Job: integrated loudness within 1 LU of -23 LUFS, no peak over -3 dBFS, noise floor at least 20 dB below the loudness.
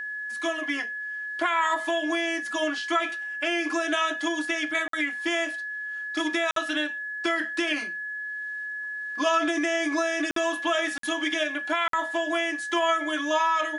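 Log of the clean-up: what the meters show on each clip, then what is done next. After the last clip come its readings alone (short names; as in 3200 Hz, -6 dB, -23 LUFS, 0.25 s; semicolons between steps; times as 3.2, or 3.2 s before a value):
dropouts 5; longest dropout 53 ms; steady tone 1700 Hz; tone level -31 dBFS; loudness -26.5 LUFS; peak -11.0 dBFS; loudness target -23.0 LUFS
-> interpolate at 4.88/6.51/10.31/10.98/11.88, 53 ms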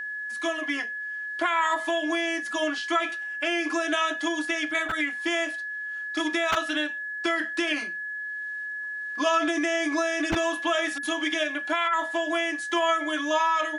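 dropouts 0; steady tone 1700 Hz; tone level -31 dBFS
-> notch 1700 Hz, Q 30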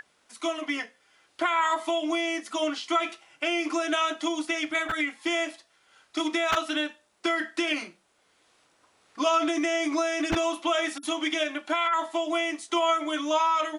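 steady tone none; loudness -27.5 LUFS; peak -12.0 dBFS; loudness target -23.0 LUFS
-> gain +4.5 dB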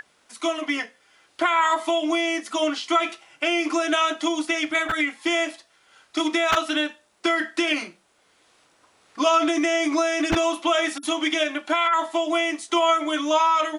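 loudness -23.0 LUFS; peak -7.5 dBFS; noise floor -62 dBFS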